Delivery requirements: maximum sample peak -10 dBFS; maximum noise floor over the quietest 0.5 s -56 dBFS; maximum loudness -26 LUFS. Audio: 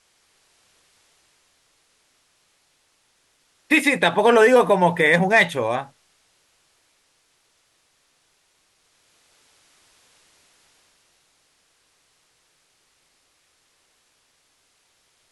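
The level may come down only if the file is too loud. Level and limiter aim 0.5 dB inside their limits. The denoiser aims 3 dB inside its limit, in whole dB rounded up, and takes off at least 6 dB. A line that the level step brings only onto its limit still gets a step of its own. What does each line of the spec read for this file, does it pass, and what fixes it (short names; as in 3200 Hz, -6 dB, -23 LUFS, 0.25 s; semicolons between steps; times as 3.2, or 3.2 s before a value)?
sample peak -4.0 dBFS: fail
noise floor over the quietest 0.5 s -65 dBFS: OK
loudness -17.0 LUFS: fail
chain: gain -9.5 dB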